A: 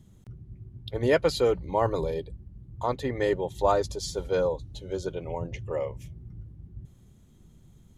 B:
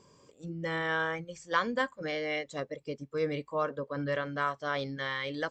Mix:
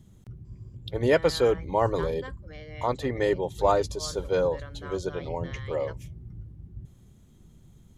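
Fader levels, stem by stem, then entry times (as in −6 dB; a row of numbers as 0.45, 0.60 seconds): +1.0, −12.0 decibels; 0.00, 0.45 seconds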